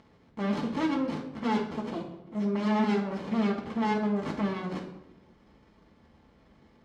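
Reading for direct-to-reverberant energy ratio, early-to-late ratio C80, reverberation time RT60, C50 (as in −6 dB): −3.0 dB, 10.0 dB, 0.95 s, 6.5 dB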